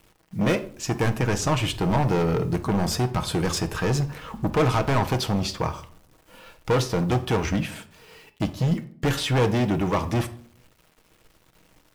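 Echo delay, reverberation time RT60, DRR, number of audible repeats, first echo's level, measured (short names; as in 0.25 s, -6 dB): none, 0.55 s, 7.5 dB, none, none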